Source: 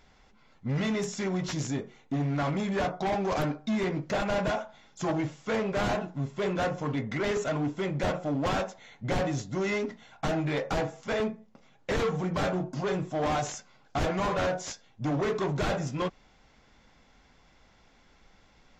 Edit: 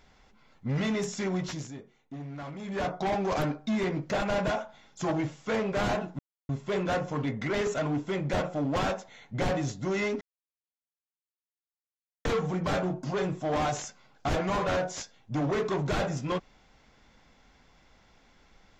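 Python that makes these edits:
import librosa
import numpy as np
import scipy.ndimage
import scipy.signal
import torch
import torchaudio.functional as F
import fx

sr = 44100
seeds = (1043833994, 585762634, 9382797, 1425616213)

y = fx.edit(x, sr, fx.fade_down_up(start_s=1.38, length_s=1.54, db=-11.0, fade_s=0.33),
    fx.insert_silence(at_s=6.19, length_s=0.3),
    fx.silence(start_s=9.91, length_s=2.04), tone=tone)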